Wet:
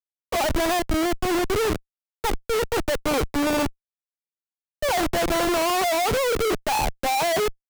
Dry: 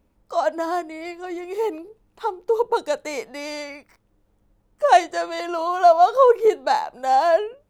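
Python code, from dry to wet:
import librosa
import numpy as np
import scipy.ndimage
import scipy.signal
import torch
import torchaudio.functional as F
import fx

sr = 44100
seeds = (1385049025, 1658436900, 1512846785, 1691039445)

y = fx.schmitt(x, sr, flips_db=-29.5)
y = fx.band_widen(y, sr, depth_pct=40)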